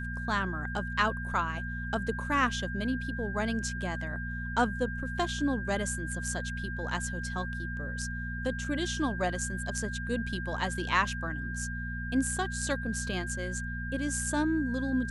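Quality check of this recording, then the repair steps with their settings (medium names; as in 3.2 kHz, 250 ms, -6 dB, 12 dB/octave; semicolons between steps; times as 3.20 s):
hum 60 Hz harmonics 4 -37 dBFS
whine 1.6 kHz -38 dBFS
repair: band-stop 1.6 kHz, Q 30; de-hum 60 Hz, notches 4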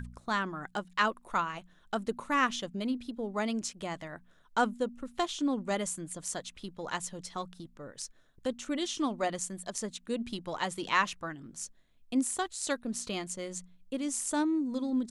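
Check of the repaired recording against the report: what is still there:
nothing left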